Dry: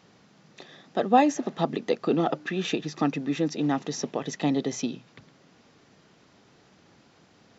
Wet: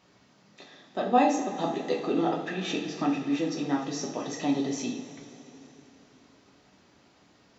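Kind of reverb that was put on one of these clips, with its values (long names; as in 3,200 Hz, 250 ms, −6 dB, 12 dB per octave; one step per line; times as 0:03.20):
coupled-rooms reverb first 0.43 s, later 3.5 s, from −16 dB, DRR −2.5 dB
level −6 dB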